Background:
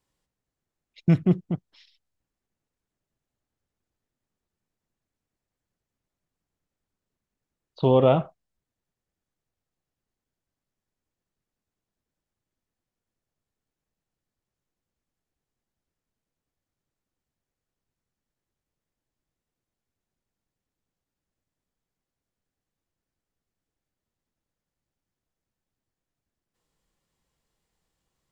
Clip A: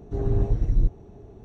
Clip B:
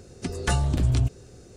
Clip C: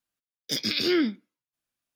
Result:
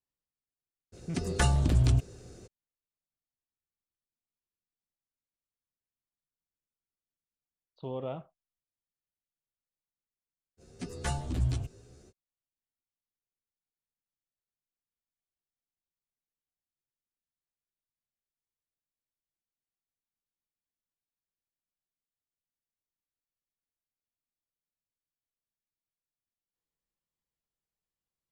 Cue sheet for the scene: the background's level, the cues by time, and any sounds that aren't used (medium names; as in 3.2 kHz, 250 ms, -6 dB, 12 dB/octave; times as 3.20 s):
background -18.5 dB
0.92 s: add B -2 dB, fades 0.02 s
10.57 s: add B -5.5 dB, fades 0.05 s + endless flanger 11.3 ms +2.1 Hz
not used: A, C